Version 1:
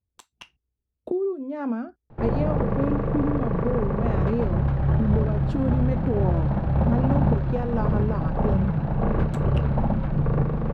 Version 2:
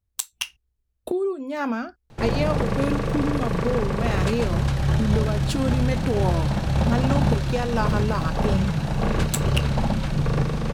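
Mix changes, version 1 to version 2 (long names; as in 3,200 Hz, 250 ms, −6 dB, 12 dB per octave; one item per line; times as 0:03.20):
speech: remove resonant band-pass 240 Hz, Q 0.53
background: remove low-pass filter 1,200 Hz 12 dB per octave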